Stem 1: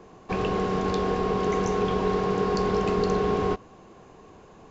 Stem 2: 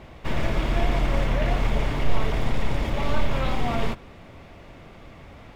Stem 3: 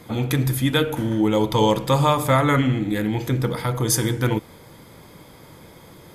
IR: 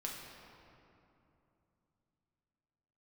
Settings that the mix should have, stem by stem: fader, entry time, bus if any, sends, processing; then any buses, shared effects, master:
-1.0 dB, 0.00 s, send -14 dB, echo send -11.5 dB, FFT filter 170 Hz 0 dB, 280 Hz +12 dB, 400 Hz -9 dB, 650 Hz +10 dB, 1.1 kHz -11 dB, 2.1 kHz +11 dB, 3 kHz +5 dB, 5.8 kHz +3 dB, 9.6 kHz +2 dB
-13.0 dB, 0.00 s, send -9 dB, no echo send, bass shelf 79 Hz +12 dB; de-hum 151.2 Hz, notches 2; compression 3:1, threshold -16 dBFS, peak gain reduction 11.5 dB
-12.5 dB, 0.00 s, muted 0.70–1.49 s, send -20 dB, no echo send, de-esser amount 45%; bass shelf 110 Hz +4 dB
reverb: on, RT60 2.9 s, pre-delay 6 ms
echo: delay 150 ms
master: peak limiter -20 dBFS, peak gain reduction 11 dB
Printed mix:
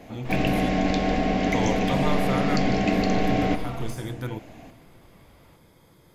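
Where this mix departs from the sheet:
stem 2: missing bass shelf 79 Hz +12 dB; master: missing peak limiter -20 dBFS, peak gain reduction 11 dB

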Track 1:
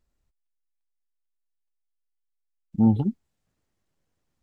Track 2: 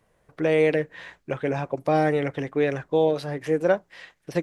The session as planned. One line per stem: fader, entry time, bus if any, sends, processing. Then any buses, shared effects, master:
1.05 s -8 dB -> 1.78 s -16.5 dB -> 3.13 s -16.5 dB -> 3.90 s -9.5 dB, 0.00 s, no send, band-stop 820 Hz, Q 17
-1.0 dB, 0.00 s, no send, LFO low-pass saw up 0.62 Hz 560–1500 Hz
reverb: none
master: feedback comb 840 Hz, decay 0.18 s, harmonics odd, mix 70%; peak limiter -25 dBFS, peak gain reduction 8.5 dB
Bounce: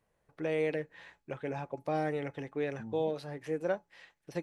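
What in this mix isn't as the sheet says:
stem 2: missing LFO low-pass saw up 0.62 Hz 560–1500 Hz; master: missing peak limiter -25 dBFS, peak gain reduction 8.5 dB

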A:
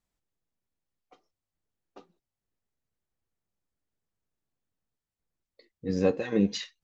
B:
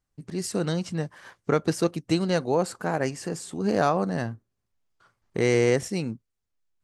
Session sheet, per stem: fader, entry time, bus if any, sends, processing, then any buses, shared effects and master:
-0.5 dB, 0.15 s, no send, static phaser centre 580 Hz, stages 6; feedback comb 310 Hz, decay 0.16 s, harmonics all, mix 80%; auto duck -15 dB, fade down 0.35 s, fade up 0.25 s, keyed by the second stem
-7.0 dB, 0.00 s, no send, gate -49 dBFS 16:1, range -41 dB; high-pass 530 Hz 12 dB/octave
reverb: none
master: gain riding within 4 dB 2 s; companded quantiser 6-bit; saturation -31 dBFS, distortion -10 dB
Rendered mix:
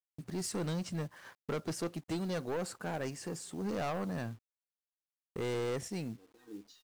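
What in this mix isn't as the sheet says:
stem A -0.5 dB -> -11.0 dB; stem B: missing high-pass 530 Hz 12 dB/octave

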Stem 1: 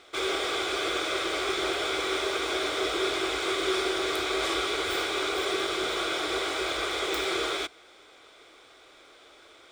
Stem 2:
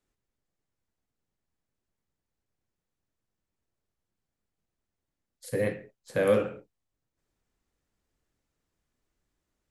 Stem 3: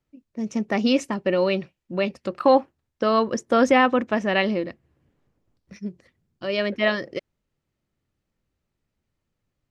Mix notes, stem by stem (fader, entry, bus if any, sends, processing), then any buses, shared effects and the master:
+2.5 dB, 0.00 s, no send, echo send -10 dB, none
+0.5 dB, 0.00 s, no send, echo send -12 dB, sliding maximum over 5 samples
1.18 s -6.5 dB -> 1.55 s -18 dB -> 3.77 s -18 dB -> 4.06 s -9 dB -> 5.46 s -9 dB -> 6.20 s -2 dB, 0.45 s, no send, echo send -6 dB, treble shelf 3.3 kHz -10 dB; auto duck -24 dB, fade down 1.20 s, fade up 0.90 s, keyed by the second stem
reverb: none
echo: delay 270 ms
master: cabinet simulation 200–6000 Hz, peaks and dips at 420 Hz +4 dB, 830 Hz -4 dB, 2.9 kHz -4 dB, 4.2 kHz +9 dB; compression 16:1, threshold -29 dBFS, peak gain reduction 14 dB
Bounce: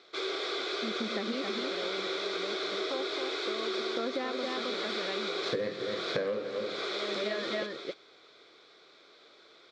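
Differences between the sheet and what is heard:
stem 1 +2.5 dB -> -5.5 dB; stem 2 +0.5 dB -> +9.0 dB

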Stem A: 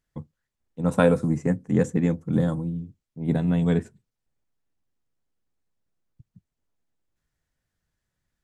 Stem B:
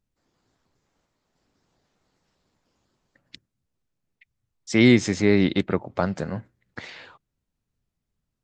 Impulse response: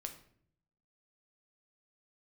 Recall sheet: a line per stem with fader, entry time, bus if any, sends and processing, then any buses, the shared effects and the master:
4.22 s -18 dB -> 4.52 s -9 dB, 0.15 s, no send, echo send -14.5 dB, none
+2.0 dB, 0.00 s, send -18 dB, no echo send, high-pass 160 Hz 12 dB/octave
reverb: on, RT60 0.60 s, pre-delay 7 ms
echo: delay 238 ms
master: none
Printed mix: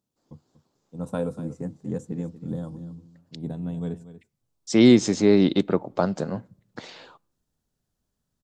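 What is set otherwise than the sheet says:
stem A -18.0 dB -> -9.0 dB; master: extra peaking EQ 2 kHz -11 dB 1 oct

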